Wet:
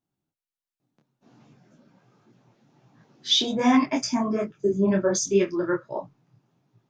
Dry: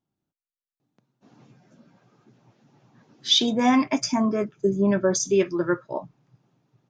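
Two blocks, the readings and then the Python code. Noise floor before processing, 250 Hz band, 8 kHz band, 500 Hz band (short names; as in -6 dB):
under -85 dBFS, -1.0 dB, -1.0 dB, -0.5 dB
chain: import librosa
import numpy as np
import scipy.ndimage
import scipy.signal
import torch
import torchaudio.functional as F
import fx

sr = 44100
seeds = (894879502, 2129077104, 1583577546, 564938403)

y = fx.detune_double(x, sr, cents=46)
y = F.gain(torch.from_numpy(y), 2.5).numpy()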